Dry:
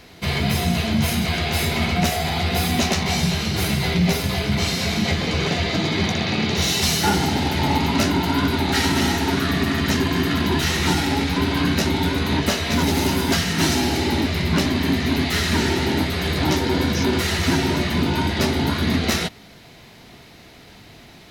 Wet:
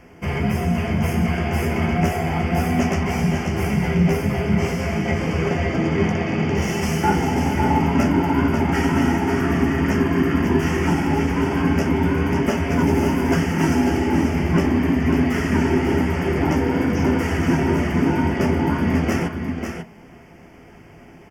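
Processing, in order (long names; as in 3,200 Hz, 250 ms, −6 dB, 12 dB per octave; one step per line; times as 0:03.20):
Butterworth band-reject 3,900 Hz, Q 1.9
high-shelf EQ 3,000 Hz −11.5 dB
single-tap delay 543 ms −6.5 dB
on a send at −8 dB: convolution reverb RT60 0.15 s, pre-delay 3 ms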